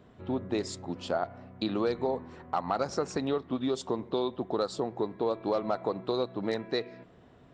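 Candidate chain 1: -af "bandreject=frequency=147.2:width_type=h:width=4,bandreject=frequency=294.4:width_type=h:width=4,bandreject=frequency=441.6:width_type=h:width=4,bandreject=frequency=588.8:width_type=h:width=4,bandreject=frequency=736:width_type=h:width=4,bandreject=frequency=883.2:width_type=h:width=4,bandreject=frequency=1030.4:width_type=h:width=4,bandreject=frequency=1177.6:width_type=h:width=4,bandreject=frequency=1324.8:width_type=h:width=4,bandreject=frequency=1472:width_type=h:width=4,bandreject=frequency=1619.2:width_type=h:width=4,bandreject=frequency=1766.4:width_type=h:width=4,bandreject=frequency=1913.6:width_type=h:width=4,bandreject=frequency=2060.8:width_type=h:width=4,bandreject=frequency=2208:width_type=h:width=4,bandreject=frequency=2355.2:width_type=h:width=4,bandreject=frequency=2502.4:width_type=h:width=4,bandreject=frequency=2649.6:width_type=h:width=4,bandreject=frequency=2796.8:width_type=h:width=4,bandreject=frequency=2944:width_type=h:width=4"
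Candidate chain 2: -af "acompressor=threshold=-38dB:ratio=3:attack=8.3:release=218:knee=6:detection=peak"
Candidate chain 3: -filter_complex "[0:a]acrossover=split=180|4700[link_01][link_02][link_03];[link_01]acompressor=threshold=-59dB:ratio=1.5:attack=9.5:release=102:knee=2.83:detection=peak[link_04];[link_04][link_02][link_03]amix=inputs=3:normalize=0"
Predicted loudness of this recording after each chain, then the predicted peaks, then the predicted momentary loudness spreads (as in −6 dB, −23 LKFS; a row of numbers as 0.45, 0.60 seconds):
−32.5, −41.0, −32.5 LKFS; −15.5, −22.0, −14.5 dBFS; 5, 4, 6 LU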